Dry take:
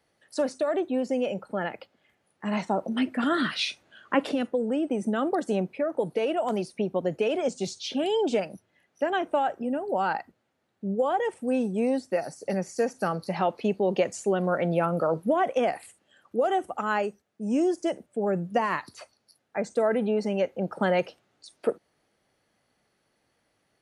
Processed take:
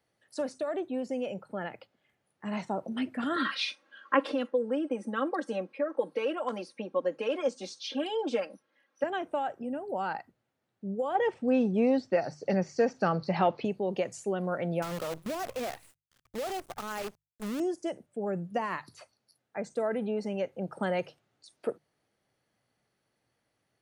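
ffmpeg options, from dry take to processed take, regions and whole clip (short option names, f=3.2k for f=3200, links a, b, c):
-filter_complex "[0:a]asettb=1/sr,asplit=3[a][b][c];[a]atrim=end=3.364[d];[b]atrim=start=3.36:end=9.04,asetpts=PTS-STARTPTS,afade=t=in:d=0.004:c=qsin,afade=t=out:st=5.676:d=0.004:c=qsin,highpass=310,equalizer=f=460:t=q:w=4:g=3,equalizer=f=750:t=q:w=4:g=-5,equalizer=f=1.1k:t=q:w=4:g=7,equalizer=f=1.6k:t=q:w=4:g=4,equalizer=f=7.3k:t=q:w=4:g=-9,lowpass=f=8.9k:w=0.5412,lowpass=f=8.9k:w=1.3066,aecho=1:1:3.7:0.95,atrim=end_sample=250488[e];[c]atrim=start=9.036[f];[d][e]acrossfade=d=0.004:c1=hsin:c2=qsin[g];[g][f]acrossfade=d=0.004:c1=qsin:c2=hsin,asettb=1/sr,asplit=3[h][i][j];[h]atrim=end=11.154[k];[i]atrim=start=11.15:end=13.65,asetpts=PTS-STARTPTS,afade=t=in:d=0.004:c=qsin,afade=t=out:st=2.496:d=0.004:c=qsin,lowpass=f=5.3k:w=0.5412,lowpass=f=5.3k:w=1.3066,acontrast=74[l];[j]atrim=start=13.646[m];[k][l]acrossfade=d=0.004:c1=hsin:c2=qsin[n];[n][m]acrossfade=d=0.004:c1=qsin:c2=hsin,asettb=1/sr,asplit=3[o][p][q];[o]atrim=end=14.824[r];[p]atrim=start=14.82:end=17.6,asetpts=PTS-STARTPTS,afade=t=in:d=0.004:c=qsin,afade=t=out:st=2.776:d=0.004:c=qsin,acompressor=threshold=-28dB:ratio=2:attack=3.2:release=140:knee=1:detection=peak,acrusher=bits=6:dc=4:mix=0:aa=0.000001[s];[q]atrim=start=17.596[t];[r][s]acrossfade=d=0.004:c1=hsin:c2=qsin[u];[u][t]acrossfade=d=0.004:c1=qsin:c2=hsin,asettb=1/sr,asplit=3[v][w][x];[v]atrim=end=20.524[y];[w]atrim=start=20.52:end=20.98,asetpts=PTS-STARTPTS,afade=t=in:d=0.004:c=qsin,afade=t=out:st=0.456:d=0.004:c=qsin,equalizer=f=8.3k:w=5:g=13.5,bandreject=f=7.9k:w=5.7[z];[x]atrim=start=20.976[aa];[y][z]acrossfade=d=0.004:c1=hsin:c2=qsin[ab];[ab][aa]acrossfade=d=0.004:c1=qsin:c2=hsin,equalizer=f=120:w=2.5:g=7,bandreject=f=50:t=h:w=6,bandreject=f=100:t=h:w=6,bandreject=f=150:t=h:w=6,volume=-6.5dB"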